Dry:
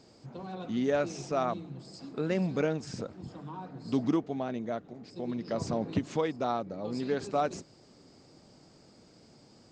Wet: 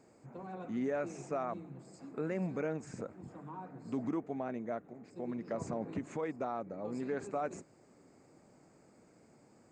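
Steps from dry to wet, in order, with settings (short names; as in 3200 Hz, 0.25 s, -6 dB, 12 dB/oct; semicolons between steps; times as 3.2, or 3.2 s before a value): low shelf 130 Hz -8 dB; limiter -23.5 dBFS, peak gain reduction 6.5 dB; band shelf 4100 Hz -14 dB 1.2 oct; gain -3 dB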